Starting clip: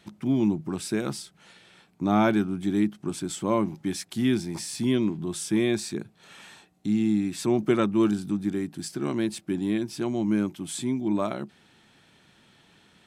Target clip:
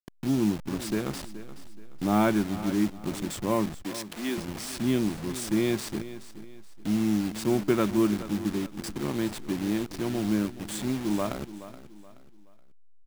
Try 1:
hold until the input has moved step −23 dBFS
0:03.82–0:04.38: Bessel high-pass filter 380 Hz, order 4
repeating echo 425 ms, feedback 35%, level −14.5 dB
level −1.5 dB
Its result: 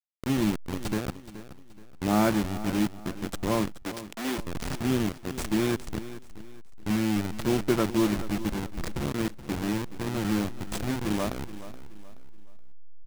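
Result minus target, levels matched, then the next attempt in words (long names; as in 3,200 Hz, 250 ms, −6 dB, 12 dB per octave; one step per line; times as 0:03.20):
hold until the input has moved: distortion +8 dB
hold until the input has moved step −30.5 dBFS
0:03.82–0:04.38: Bessel high-pass filter 380 Hz, order 4
repeating echo 425 ms, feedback 35%, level −14.5 dB
level −1.5 dB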